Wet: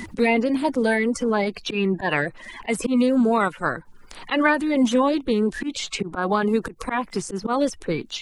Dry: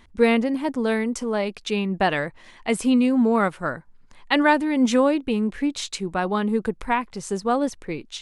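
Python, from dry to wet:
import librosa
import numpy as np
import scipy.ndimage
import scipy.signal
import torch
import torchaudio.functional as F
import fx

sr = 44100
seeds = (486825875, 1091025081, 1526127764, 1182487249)

y = fx.spec_quant(x, sr, step_db=30)
y = fx.auto_swell(y, sr, attack_ms=147.0)
y = fx.band_squash(y, sr, depth_pct=70)
y = F.gain(torch.from_numpy(y), 2.0).numpy()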